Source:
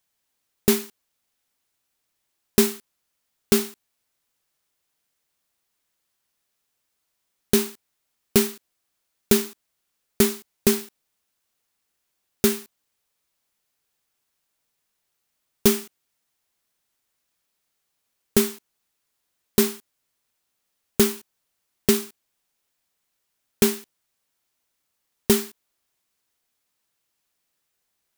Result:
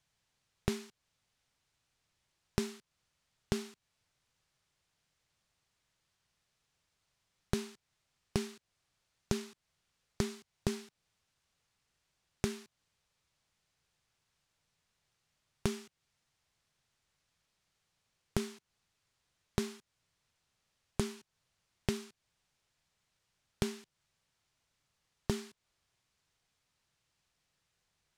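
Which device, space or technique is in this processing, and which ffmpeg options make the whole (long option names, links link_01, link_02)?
jukebox: -af "lowpass=6700,lowshelf=frequency=190:width_type=q:width=1.5:gain=7.5,acompressor=threshold=-33dB:ratio=4"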